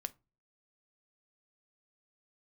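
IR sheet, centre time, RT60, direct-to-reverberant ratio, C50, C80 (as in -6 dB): 2 ms, 0.30 s, 12.0 dB, 23.5 dB, 31.5 dB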